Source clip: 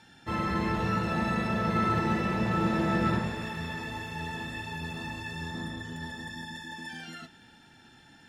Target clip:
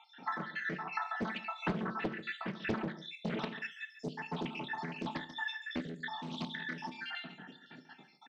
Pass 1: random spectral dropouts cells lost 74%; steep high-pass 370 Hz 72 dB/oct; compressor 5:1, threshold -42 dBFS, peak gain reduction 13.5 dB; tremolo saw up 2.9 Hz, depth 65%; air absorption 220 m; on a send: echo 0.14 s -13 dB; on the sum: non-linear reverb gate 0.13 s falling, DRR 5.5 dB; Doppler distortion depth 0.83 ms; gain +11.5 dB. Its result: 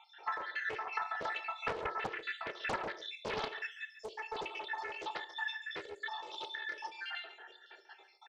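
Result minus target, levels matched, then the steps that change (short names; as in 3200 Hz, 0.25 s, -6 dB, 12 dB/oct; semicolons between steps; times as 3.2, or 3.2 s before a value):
125 Hz band -13.5 dB
change: steep high-pass 140 Hz 72 dB/oct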